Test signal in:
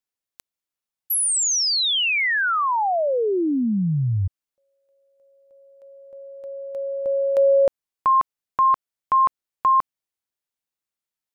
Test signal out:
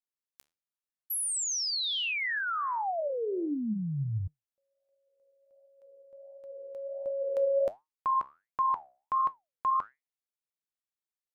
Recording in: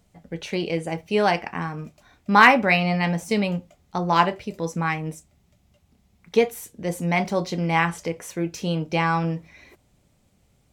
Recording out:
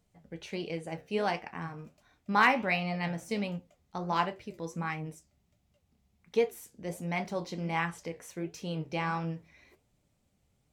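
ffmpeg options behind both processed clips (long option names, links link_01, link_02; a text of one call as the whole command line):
ffmpeg -i in.wav -af "flanger=delay=6.4:depth=9:regen=76:speed=1.4:shape=sinusoidal,volume=-6dB" out.wav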